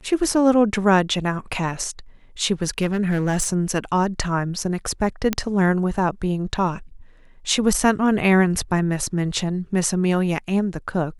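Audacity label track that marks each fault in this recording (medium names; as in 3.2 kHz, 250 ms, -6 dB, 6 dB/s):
2.690000	3.490000	clipped -15 dBFS
5.330000	5.330000	pop -6 dBFS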